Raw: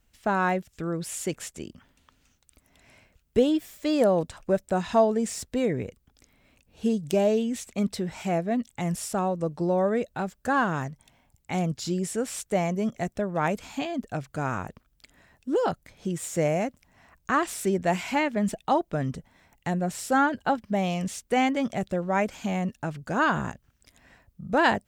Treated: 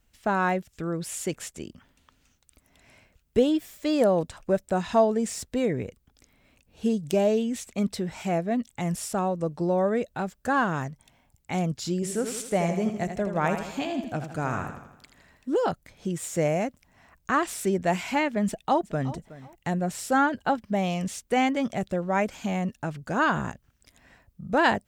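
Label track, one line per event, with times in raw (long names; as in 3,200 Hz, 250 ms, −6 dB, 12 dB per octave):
11.940000	15.490000	feedback echo with a swinging delay time 81 ms, feedback 53%, depth 62 cents, level −8 dB
18.460000	19.100000	delay throw 370 ms, feedback 25%, level −17 dB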